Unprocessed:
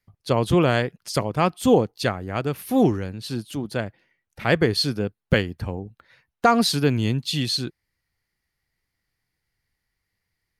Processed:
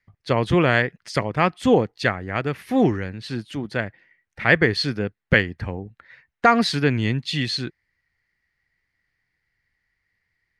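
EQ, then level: air absorption 72 m; bell 1900 Hz +11 dB 0.67 oct; 0.0 dB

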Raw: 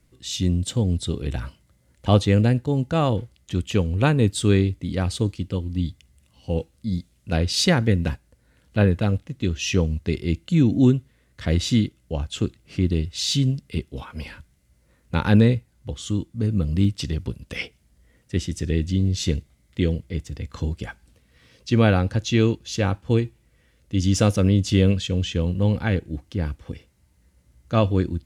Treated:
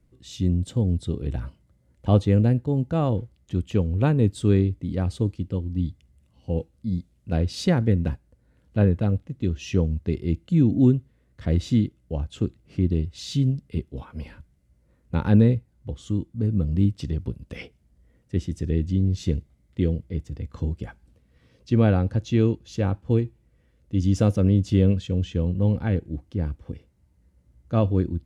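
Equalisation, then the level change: tilt shelf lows +6 dB, about 1100 Hz; -6.5 dB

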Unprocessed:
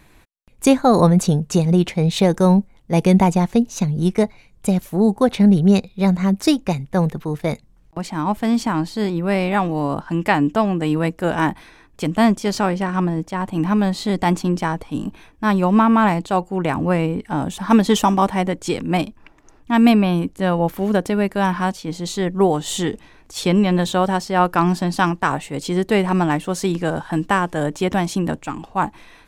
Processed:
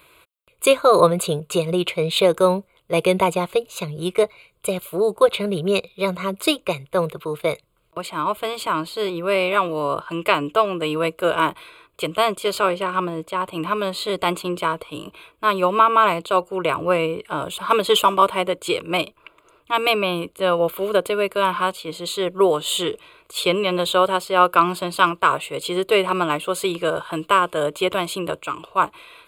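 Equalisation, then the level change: HPF 560 Hz 6 dB/oct; fixed phaser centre 1200 Hz, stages 8; +7.0 dB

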